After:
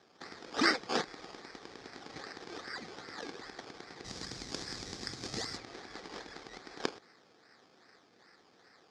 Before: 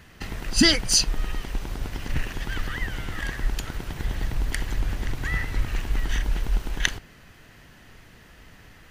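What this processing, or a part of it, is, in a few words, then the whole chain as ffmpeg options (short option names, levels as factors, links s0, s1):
circuit-bent sampling toy: -filter_complex "[0:a]acrusher=samples=18:mix=1:aa=0.000001:lfo=1:lforange=10.8:lforate=2.5,highpass=440,equalizer=f=610:t=q:w=4:g=-9,equalizer=f=970:t=q:w=4:g=-9,equalizer=f=1400:t=q:w=4:g=-4,equalizer=f=2800:t=q:w=4:g=-9,equalizer=f=5000:t=q:w=4:g=4,lowpass=f=5800:w=0.5412,lowpass=f=5800:w=1.3066,asplit=3[s0][s1][s2];[s0]afade=t=out:st=4.04:d=0.02[s3];[s1]bass=f=250:g=11,treble=f=4000:g=15,afade=t=in:st=4.04:d=0.02,afade=t=out:st=5.56:d=0.02[s4];[s2]afade=t=in:st=5.56:d=0.02[s5];[s3][s4][s5]amix=inputs=3:normalize=0,volume=0.631"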